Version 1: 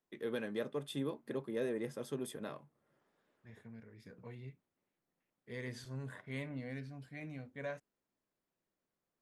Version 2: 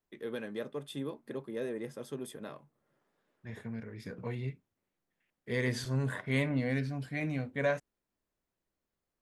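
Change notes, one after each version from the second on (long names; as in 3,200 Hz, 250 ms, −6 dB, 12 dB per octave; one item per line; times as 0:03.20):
second voice +12.0 dB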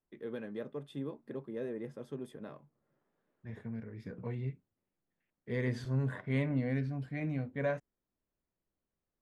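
master: add drawn EQ curve 170 Hz 0 dB, 1,900 Hz −6 dB, 10,000 Hz −16 dB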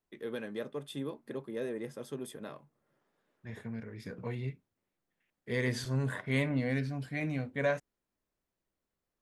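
master: remove drawn EQ curve 170 Hz 0 dB, 1,900 Hz −6 dB, 10,000 Hz −16 dB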